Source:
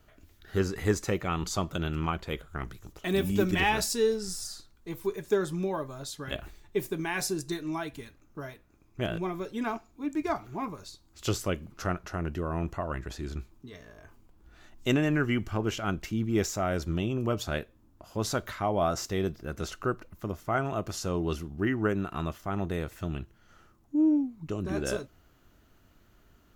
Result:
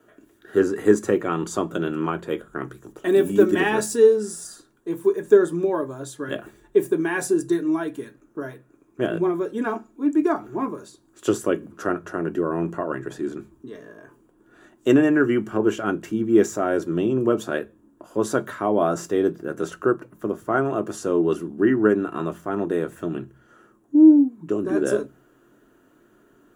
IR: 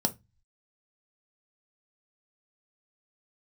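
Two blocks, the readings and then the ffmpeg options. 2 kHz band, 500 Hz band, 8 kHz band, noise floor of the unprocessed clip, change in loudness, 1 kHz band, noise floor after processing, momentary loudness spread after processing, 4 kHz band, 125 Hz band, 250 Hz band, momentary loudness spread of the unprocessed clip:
+5.0 dB, +11.0 dB, +2.0 dB, −62 dBFS, +9.0 dB, +4.5 dB, −59 dBFS, 15 LU, −3.0 dB, −1.0 dB, +10.0 dB, 13 LU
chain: -filter_complex "[1:a]atrim=start_sample=2205,asetrate=79380,aresample=44100[link_01];[0:a][link_01]afir=irnorm=-1:irlink=0"

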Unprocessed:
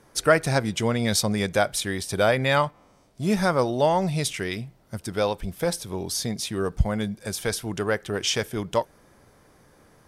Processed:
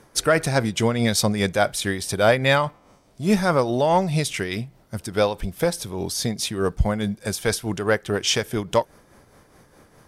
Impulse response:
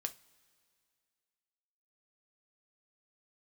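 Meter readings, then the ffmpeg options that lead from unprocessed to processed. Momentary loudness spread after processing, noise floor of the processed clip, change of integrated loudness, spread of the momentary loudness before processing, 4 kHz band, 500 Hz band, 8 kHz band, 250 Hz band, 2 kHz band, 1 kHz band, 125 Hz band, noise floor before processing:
8 LU, −56 dBFS, +2.5 dB, 9 LU, +2.5 dB, +2.5 dB, +2.0 dB, +3.0 dB, +2.5 dB, +2.0 dB, +2.5 dB, −57 dBFS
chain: -af "tremolo=f=4.8:d=0.49,acontrast=72,volume=-1.5dB"

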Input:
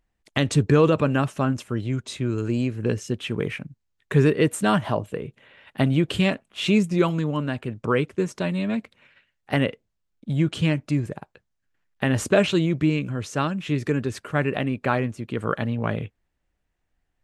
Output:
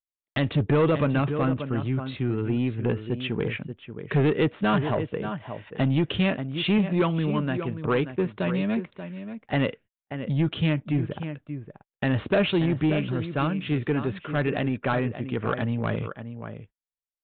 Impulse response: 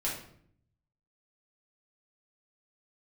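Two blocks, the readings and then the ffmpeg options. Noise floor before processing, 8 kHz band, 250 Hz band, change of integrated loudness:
−76 dBFS, below −40 dB, −1.5 dB, −2.0 dB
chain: -filter_complex "[0:a]asplit=2[link_01][link_02];[link_02]adelay=583.1,volume=-11dB,highshelf=frequency=4000:gain=-13.1[link_03];[link_01][link_03]amix=inputs=2:normalize=0,aresample=8000,asoftclip=type=tanh:threshold=-15.5dB,aresample=44100,agate=range=-39dB:threshold=-47dB:ratio=16:detection=peak"

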